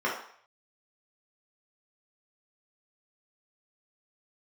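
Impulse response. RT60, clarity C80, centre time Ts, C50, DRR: 0.60 s, 9.0 dB, 35 ms, 4.5 dB, -5.5 dB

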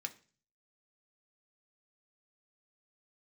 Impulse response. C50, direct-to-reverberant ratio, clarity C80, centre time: 17.0 dB, 5.0 dB, 21.5 dB, 5 ms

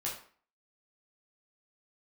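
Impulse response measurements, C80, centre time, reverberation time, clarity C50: 10.5 dB, 32 ms, 0.45 s, 6.0 dB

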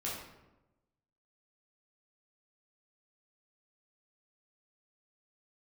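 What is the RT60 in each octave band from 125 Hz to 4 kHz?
1.3 s, 1.2 s, 1.1 s, 0.95 s, 0.75 s, 0.60 s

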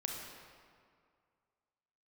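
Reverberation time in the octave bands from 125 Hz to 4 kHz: 2.1 s, 2.1 s, 2.1 s, 2.2 s, 1.8 s, 1.4 s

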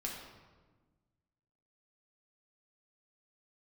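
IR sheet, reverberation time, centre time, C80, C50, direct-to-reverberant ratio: 1.3 s, 57 ms, 4.5 dB, 2.5 dB, -2.5 dB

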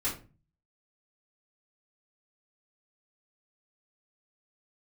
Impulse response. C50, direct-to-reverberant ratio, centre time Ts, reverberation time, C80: 7.5 dB, -9.5 dB, 26 ms, 0.35 s, 14.0 dB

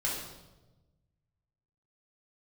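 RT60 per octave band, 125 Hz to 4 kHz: 2.0 s, 1.5 s, 1.2 s, 0.95 s, 0.80 s, 0.85 s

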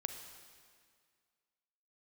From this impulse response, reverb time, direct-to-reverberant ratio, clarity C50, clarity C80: 2.0 s, 6.5 dB, 7.0 dB, 8.0 dB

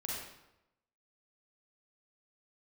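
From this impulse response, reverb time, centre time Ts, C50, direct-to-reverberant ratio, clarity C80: 0.90 s, 74 ms, -1.5 dB, -4.5 dB, 2.0 dB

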